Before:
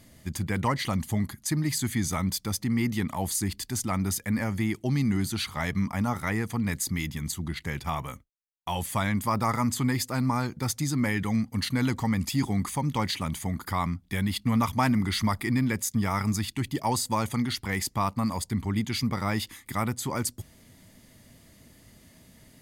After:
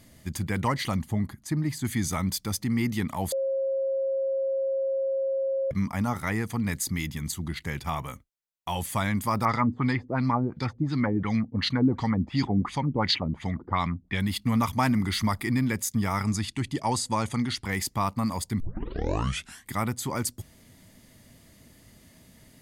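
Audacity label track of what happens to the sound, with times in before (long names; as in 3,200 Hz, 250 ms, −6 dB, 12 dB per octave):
0.990000	1.850000	high-shelf EQ 2,300 Hz −10.5 dB
3.320000	5.710000	beep over 539 Hz −24 dBFS
9.450000	14.200000	auto-filter low-pass sine 2.8 Hz 310–4,700 Hz
16.230000	17.650000	low-pass filter 10,000 Hz 24 dB per octave
18.600000	18.600000	tape start 1.12 s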